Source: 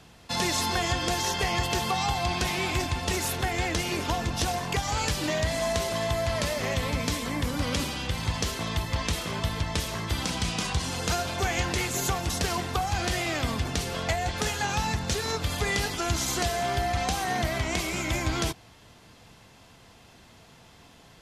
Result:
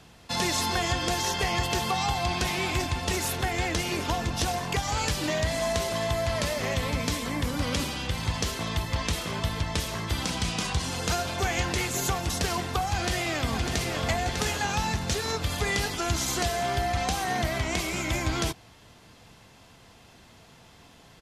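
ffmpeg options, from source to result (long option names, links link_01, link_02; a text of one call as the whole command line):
ffmpeg -i in.wav -filter_complex "[0:a]asplit=2[link_01][link_02];[link_02]afade=type=in:start_time=12.92:duration=0.01,afade=type=out:start_time=13.98:duration=0.01,aecho=0:1:600|1200|1800|2400|3000:0.530884|0.212354|0.0849415|0.0339766|0.0135906[link_03];[link_01][link_03]amix=inputs=2:normalize=0" out.wav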